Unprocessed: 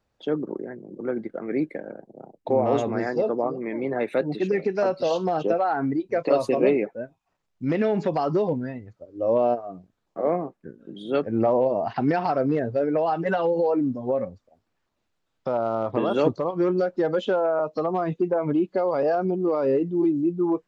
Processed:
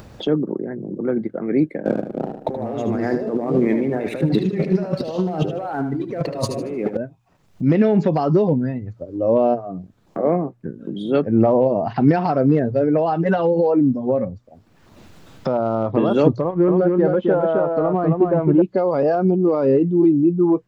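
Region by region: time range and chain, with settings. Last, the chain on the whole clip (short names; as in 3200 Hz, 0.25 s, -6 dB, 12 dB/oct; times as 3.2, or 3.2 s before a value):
1.85–6.97 sample leveller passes 1 + negative-ratio compressor -30 dBFS + feedback echo 76 ms, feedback 31%, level -9 dB
16.41–18.62 G.711 law mismatch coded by A + LPF 2000 Hz + echo 0.266 s -3.5 dB
whole clip: bell 130 Hz +10 dB 2.9 oct; notches 60/120 Hz; upward compressor, threshold -23 dBFS; gain +1.5 dB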